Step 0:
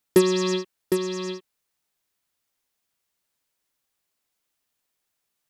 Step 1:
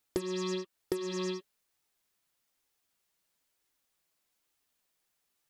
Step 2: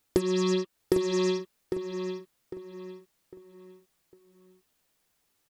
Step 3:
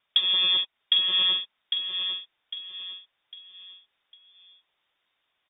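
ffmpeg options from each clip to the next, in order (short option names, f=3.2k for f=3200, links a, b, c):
-af "acompressor=threshold=-30dB:ratio=16,flanger=delay=2.3:depth=4:regen=-49:speed=1.1:shape=sinusoidal,volume=3.5dB"
-filter_complex "[0:a]lowshelf=f=430:g=5.5,asplit=2[a][b];[b]adelay=803,lowpass=f=3.1k:p=1,volume=-7dB,asplit=2[c][d];[d]adelay=803,lowpass=f=3.1k:p=1,volume=0.37,asplit=2[e][f];[f]adelay=803,lowpass=f=3.1k:p=1,volume=0.37,asplit=2[g][h];[h]adelay=803,lowpass=f=3.1k:p=1,volume=0.37[i];[c][e][g][i]amix=inputs=4:normalize=0[j];[a][j]amix=inputs=2:normalize=0,volume=5dB"
-filter_complex "[0:a]asplit=2[a][b];[b]volume=23dB,asoftclip=hard,volume=-23dB,volume=-6dB[c];[a][c]amix=inputs=2:normalize=0,lowpass=f=3.1k:t=q:w=0.5098,lowpass=f=3.1k:t=q:w=0.6013,lowpass=f=3.1k:t=q:w=0.9,lowpass=f=3.1k:t=q:w=2.563,afreqshift=-3700"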